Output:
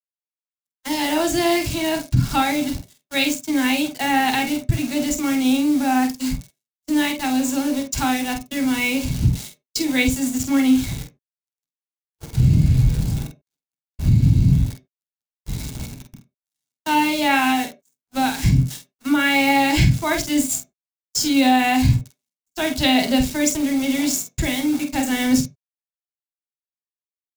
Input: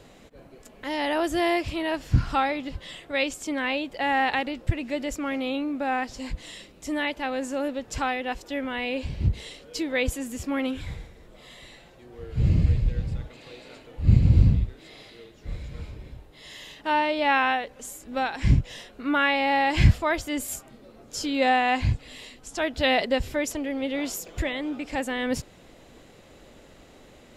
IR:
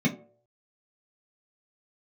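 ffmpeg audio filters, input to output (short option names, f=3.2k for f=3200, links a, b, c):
-filter_complex "[0:a]lowpass=8.1k,aeval=exprs='val(0)*gte(abs(val(0)),0.015)':c=same,equalizer=f=220:t=o:w=0.52:g=-7.5,agate=range=-46dB:threshold=-38dB:ratio=16:detection=peak,asplit=2[a][b];[1:a]atrim=start_sample=2205,atrim=end_sample=4410[c];[b][c]afir=irnorm=-1:irlink=0,volume=-14dB[d];[a][d]amix=inputs=2:normalize=0,alimiter=limit=-11.5dB:level=0:latency=1:release=167,bass=f=250:g=1,treble=f=4k:g=14,asplit=2[e][f];[f]adelay=47,volume=-7.5dB[g];[e][g]amix=inputs=2:normalize=0,volume=2.5dB"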